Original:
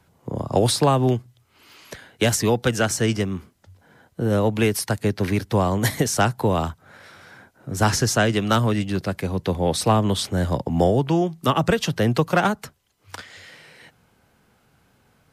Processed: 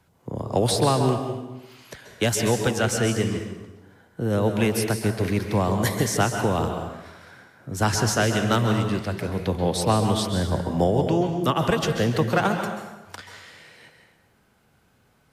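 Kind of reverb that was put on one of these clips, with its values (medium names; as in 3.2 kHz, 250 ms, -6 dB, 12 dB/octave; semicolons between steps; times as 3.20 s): plate-style reverb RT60 1.1 s, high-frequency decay 0.8×, pre-delay 120 ms, DRR 4.5 dB; trim -3 dB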